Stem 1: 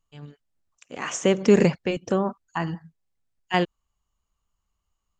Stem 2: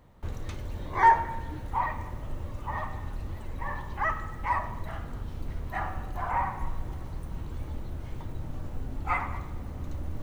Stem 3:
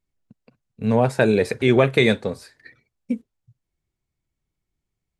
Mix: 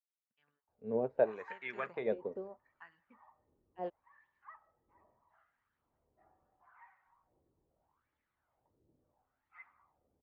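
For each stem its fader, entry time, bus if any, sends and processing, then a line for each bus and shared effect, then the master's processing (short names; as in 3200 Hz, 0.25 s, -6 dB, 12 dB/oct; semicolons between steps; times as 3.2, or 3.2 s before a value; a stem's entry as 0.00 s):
0.0 dB, 0.25 s, no send, de-esser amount 95%; auto duck -10 dB, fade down 0.75 s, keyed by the third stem
-16.5 dB, 0.45 s, no send, AGC gain up to 7.5 dB; flange 1.3 Hz, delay 0.2 ms, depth 1.4 ms, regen +43%
-6.0 dB, 0.00 s, no send, LPF 3300 Hz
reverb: off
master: wah 0.76 Hz 390–1900 Hz, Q 2.5; upward expander 1.5:1, over -48 dBFS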